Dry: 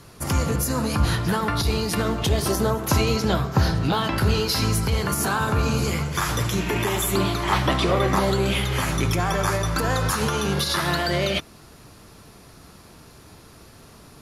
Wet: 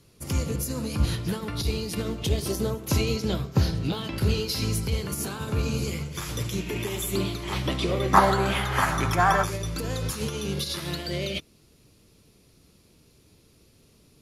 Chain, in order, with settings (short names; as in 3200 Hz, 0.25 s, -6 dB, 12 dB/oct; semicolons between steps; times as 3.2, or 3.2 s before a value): band shelf 1100 Hz -8 dB, from 8.13 s +8.5 dB, from 9.43 s -10 dB; upward expander 1.5:1, over -33 dBFS